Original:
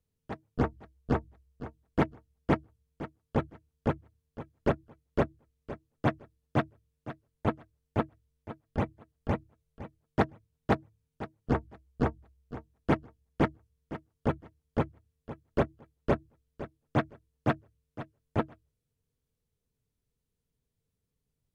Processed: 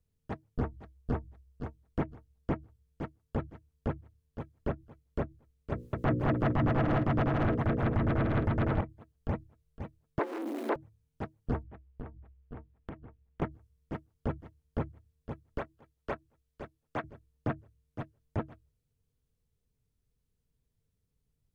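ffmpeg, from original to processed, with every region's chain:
ffmpeg -i in.wav -filter_complex "[0:a]asettb=1/sr,asplit=3[link_01][link_02][link_03];[link_01]atrim=end=5.724[link_04];[link_02]atrim=start=5.72:end=8.81,asetpts=PTS-STARTPTS,afade=type=in:duration=0.004:curve=qsin,afade=type=out:start_time=3.086:duration=0.004:curve=qsin,bandreject=frequency=60:width_type=h:width=6,bandreject=frequency=120:width_type=h:width=6,bandreject=frequency=180:width_type=h:width=6,bandreject=frequency=240:width_type=h:width=6,bandreject=frequency=300:width_type=h:width=6,bandreject=frequency=360:width_type=h:width=6,bandreject=frequency=420:width_type=h:width=6,bandreject=frequency=480:width_type=h:width=6,bandreject=frequency=540:width_type=h:width=6,aeval=exprs='0.299*sin(PI/2*3.55*val(0)/0.299)':channel_layout=same,aecho=1:1:210|378|512.4|619.9|705.9|774.7|829.8|873.8|909.1|937.3:0.794|0.631|0.501|0.398|0.316|0.251|0.2|0.158|0.126|0.1,atrim=end_sample=136269[link_05];[link_03]atrim=start=8.806[link_06];[link_04][link_05]acrossfade=duration=0.004:curve1=hsin:curve2=qsin[link_07];[link_07][link_06]acrossfade=duration=0.004:curve1=qsin:curve2=hsin,asettb=1/sr,asplit=3[link_08][link_09][link_10];[link_08]atrim=end=10.194[link_11];[link_09]atrim=start=10.19:end=10.76,asetpts=PTS-STARTPTS,afade=type=in:duration=0.004:curve=qsin,afade=type=out:start_time=0.566:duration=0.004:curve=qsin,aeval=exprs='val(0)+0.5*0.0158*sgn(val(0))':channel_layout=same,acompressor=mode=upward:threshold=-30dB:ratio=2.5:attack=3.2:release=140:knee=2.83:detection=peak,afreqshift=220[link_12];[link_10]atrim=start=10.756[link_13];[link_11][link_12]acrossfade=duration=0.004:curve1=hsin:curve2=qsin[link_14];[link_14][link_13]acrossfade=duration=0.004:curve1=qsin:curve2=hsin,asettb=1/sr,asplit=3[link_15][link_16][link_17];[link_15]atrim=end=11.634[link_18];[link_16]atrim=start=11.63:end=13.42,asetpts=PTS-STARTPTS,afade=type=in:duration=0.004:curve=qsin,afade=type=out:start_time=1.786:duration=0.004:curve=qsin,lowpass=frequency=3000:width=0.5412,lowpass=frequency=3000:width=1.3066,acompressor=threshold=-39dB:ratio=16:attack=3.2:release=140:knee=1:detection=peak[link_19];[link_17]atrim=start=13.416[link_20];[link_18][link_19]acrossfade=duration=0.004:curve1=hsin:curve2=qsin[link_21];[link_21][link_20]acrossfade=duration=0.004:curve1=qsin:curve2=hsin,asettb=1/sr,asplit=3[link_22][link_23][link_24];[link_22]atrim=end=15.584[link_25];[link_23]atrim=start=15.58:end=17.04,asetpts=PTS-STARTPTS,afade=type=in:duration=0.004:curve=qsin,afade=type=out:start_time=1.456:duration=0.004:curve=qsin,acrossover=split=260|670[link_26][link_27][link_28];[link_26]acompressor=threshold=-41dB:ratio=4[link_29];[link_27]acompressor=threshold=-35dB:ratio=4[link_30];[link_28]acompressor=threshold=-31dB:ratio=4[link_31];[link_29][link_30][link_31]amix=inputs=3:normalize=0,lowshelf=frequency=480:gain=-7.5[link_32];[link_24]atrim=start=17.036[link_33];[link_25][link_32]acrossfade=duration=0.004:curve1=hsin:curve2=qsin[link_34];[link_34][link_33]acrossfade=duration=0.004:curve1=qsin:curve2=hsin,acrossover=split=2700[link_35][link_36];[link_36]acompressor=threshold=-56dB:ratio=4:attack=1:release=60[link_37];[link_35][link_37]amix=inputs=2:normalize=0,lowshelf=frequency=120:gain=8.5,alimiter=limit=-19dB:level=0:latency=1:release=108,volume=-1dB" out.wav

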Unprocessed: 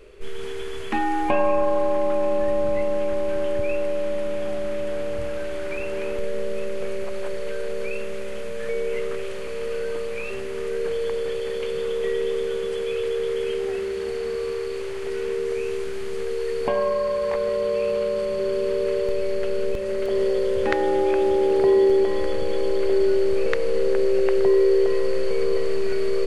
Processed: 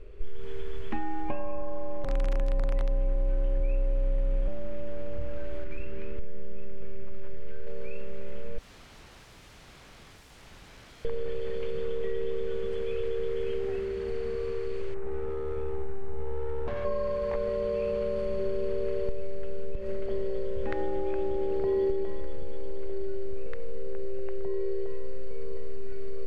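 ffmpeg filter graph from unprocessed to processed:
ffmpeg -i in.wav -filter_complex "[0:a]asettb=1/sr,asplit=3[link_01][link_02][link_03];[link_01]atrim=end=2.044[link_04];[link_02]atrim=start=2.04:end=4.48,asetpts=PTS-STARTPTS,afade=type=in:duration=0.004:curve=qsin,afade=type=out:start_time=2.436:duration=0.004:curve=qsin,aeval=exprs='(mod(4.47*val(0)+1,2)-1)/4.47':channel_layout=same,afreqshift=-32[link_05];[link_03]atrim=start=4.476[link_06];[link_04][link_05]acrossfade=duration=0.004:curve1=hsin:curve2=qsin[link_07];[link_07][link_06]acrossfade=duration=0.004:curve1=qsin:curve2=hsin,asettb=1/sr,asplit=3[link_08][link_09][link_10];[link_08]atrim=end=5.644[link_11];[link_09]atrim=start=5.64:end=7.67,asetpts=PTS-STARTPTS,afade=type=in:duration=0.004:curve=qsin,afade=type=out:start_time=2.026:duration=0.004:curve=qsin,equalizer=frequency=720:width=1.4:gain=-11.5,adynamicsmooth=sensitivity=7:basefreq=3100[link_12];[link_10]atrim=start=7.666[link_13];[link_11][link_12]acrossfade=duration=0.004:curve1=hsin:curve2=qsin[link_14];[link_14][link_13]acrossfade=duration=0.004:curve1=qsin:curve2=hsin,asettb=1/sr,asplit=3[link_15][link_16][link_17];[link_15]atrim=end=8.584[link_18];[link_16]atrim=start=8.58:end=11.05,asetpts=PTS-STARTPTS,afade=type=in:duration=0.004:curve=qsin,afade=type=out:start_time=2.466:duration=0.004:curve=qsin,highpass=370,acompressor=threshold=-29dB:ratio=12:attack=3.2:release=140:knee=1:detection=peak,aeval=exprs='(mod(79.4*val(0)+1,2)-1)/79.4':channel_layout=same[link_19];[link_17]atrim=start=11.046[link_20];[link_18][link_19]acrossfade=duration=0.004:curve1=hsin:curve2=qsin[link_21];[link_21][link_20]acrossfade=duration=0.004:curve1=qsin:curve2=hsin,asettb=1/sr,asplit=3[link_22][link_23][link_24];[link_22]atrim=end=14.944[link_25];[link_23]atrim=start=14.94:end=16.85,asetpts=PTS-STARTPTS,afade=type=in:duration=0.004:curve=qsin,afade=type=out:start_time=1.906:duration=0.004:curve=qsin,asuperstop=centerf=4200:order=4:qfactor=0.54,asoftclip=type=hard:threshold=-26dB[link_26];[link_24]atrim=start=16.846[link_27];[link_25][link_26]acrossfade=duration=0.004:curve1=hsin:curve2=qsin[link_28];[link_28][link_27]acrossfade=duration=0.004:curve1=qsin:curve2=hsin,aemphasis=mode=reproduction:type=bsi,acompressor=threshold=-15dB:ratio=6,volume=-7.5dB" out.wav

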